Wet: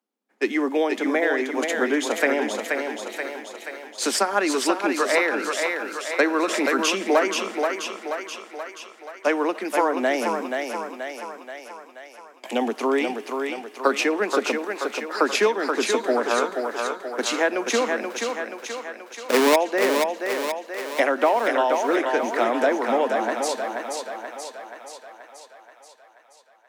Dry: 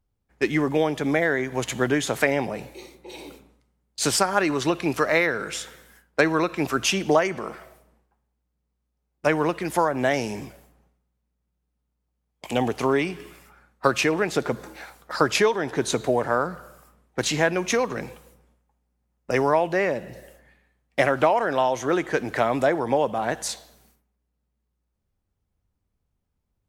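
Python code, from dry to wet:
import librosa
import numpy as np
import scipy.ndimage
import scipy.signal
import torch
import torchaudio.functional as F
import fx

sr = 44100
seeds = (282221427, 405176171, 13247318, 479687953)

y = fx.halfwave_hold(x, sr, at=(18.1, 19.56))
y = scipy.signal.sosfilt(scipy.signal.butter(16, 210.0, 'highpass', fs=sr, output='sos'), y)
y = fx.high_shelf(y, sr, hz=6600.0, db=-3.5)
y = fx.echo_thinned(y, sr, ms=480, feedback_pct=61, hz=290.0, wet_db=-4)
y = fx.pre_swell(y, sr, db_per_s=45.0, at=(6.42, 7.05))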